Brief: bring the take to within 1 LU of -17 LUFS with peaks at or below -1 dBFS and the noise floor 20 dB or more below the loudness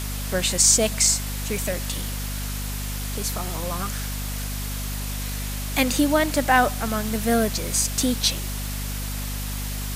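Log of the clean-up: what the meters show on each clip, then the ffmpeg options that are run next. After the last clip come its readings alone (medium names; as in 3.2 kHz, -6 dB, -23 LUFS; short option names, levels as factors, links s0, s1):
hum 50 Hz; highest harmonic 250 Hz; hum level -27 dBFS; noise floor -29 dBFS; noise floor target -44 dBFS; loudness -23.5 LUFS; peak level -4.5 dBFS; loudness target -17.0 LUFS
-> -af "bandreject=f=50:t=h:w=4,bandreject=f=100:t=h:w=4,bandreject=f=150:t=h:w=4,bandreject=f=200:t=h:w=4,bandreject=f=250:t=h:w=4"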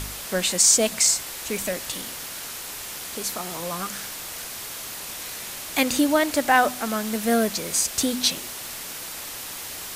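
hum not found; noise floor -35 dBFS; noise floor target -44 dBFS
-> -af "afftdn=nr=9:nf=-35"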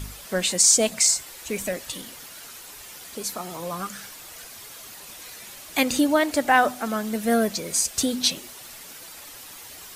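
noise floor -43 dBFS; loudness -22.5 LUFS; peak level -5.0 dBFS; loudness target -17.0 LUFS
-> -af "volume=1.88,alimiter=limit=0.891:level=0:latency=1"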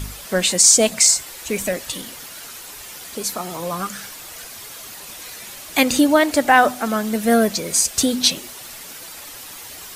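loudness -17.0 LUFS; peak level -1.0 dBFS; noise floor -37 dBFS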